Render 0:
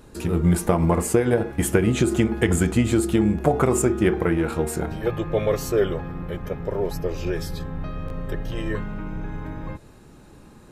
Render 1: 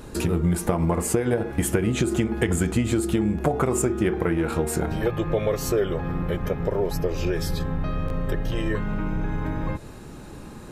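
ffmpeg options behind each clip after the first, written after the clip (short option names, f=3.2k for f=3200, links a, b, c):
-af "acompressor=threshold=-30dB:ratio=3,volume=7.5dB"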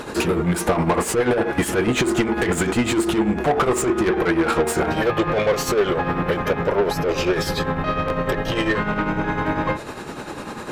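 -filter_complex "[0:a]asplit=2[a][b];[b]highpass=f=720:p=1,volume=25dB,asoftclip=type=tanh:threshold=-8dB[c];[a][c]amix=inputs=2:normalize=0,lowpass=f=2.9k:p=1,volume=-6dB,tremolo=f=10:d=0.55"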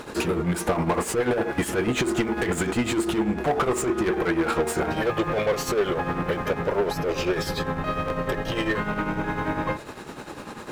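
-af "aeval=exprs='sgn(val(0))*max(abs(val(0))-0.00631,0)':c=same,volume=-4dB"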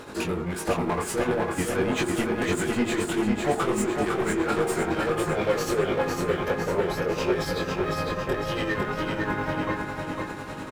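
-af "flanger=delay=19:depth=3.3:speed=1.5,aecho=1:1:504|1008|1512|2016|2520|3024|3528:0.631|0.341|0.184|0.0994|0.0537|0.029|0.0156"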